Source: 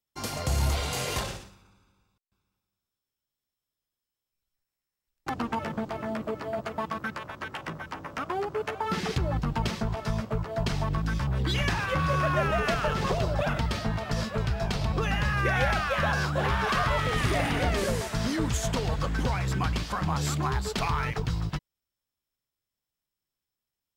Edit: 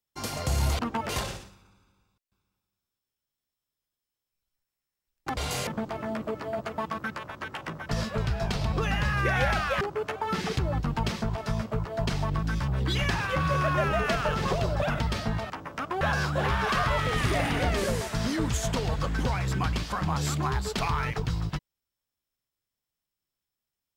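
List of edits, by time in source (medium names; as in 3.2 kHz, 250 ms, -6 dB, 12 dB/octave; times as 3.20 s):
0.79–1.09 s: swap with 5.37–5.67 s
7.89–8.40 s: swap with 14.09–16.01 s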